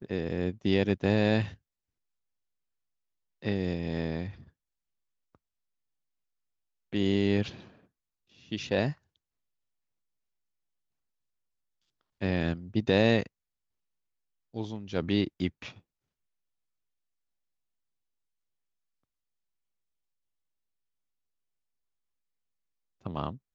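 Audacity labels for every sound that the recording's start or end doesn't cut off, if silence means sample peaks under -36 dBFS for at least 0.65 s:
3.440000	4.310000	sound
6.930000	7.550000	sound
8.520000	8.920000	sound
12.220000	13.260000	sound
14.540000	15.690000	sound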